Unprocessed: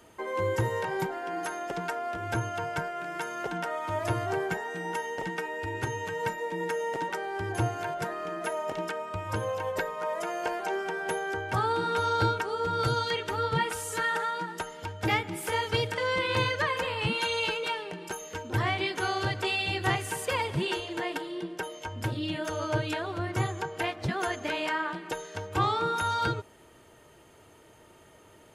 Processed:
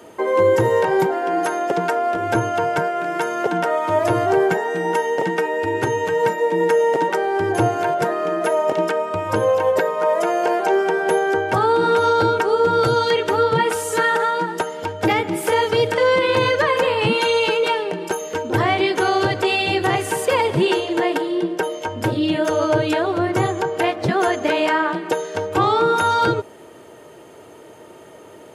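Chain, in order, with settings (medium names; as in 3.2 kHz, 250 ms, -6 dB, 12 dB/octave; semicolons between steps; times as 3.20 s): high-pass 110 Hz; peaking EQ 460 Hz +8 dB 2 oct; peak limiter -16 dBFS, peak gain reduction 7 dB; trim +8 dB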